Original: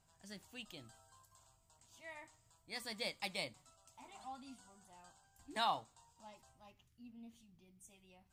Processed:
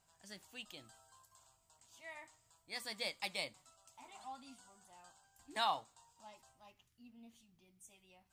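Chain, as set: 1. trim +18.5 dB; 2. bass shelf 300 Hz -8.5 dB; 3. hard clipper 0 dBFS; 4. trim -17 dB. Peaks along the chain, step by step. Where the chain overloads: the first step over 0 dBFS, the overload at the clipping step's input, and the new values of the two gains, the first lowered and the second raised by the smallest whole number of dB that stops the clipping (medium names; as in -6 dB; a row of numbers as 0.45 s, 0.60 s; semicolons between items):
-4.5 dBFS, -5.5 dBFS, -5.5 dBFS, -22.5 dBFS; nothing clips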